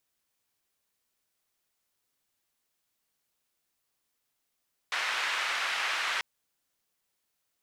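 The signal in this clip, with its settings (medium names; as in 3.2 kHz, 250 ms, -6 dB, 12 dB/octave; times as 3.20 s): noise band 1.3–2.1 kHz, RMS -31 dBFS 1.29 s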